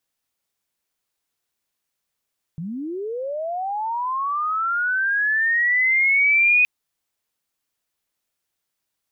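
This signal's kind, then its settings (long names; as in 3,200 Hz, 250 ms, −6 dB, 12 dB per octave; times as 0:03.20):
glide linear 150 Hz → 2,500 Hz −27 dBFS → −12.5 dBFS 4.07 s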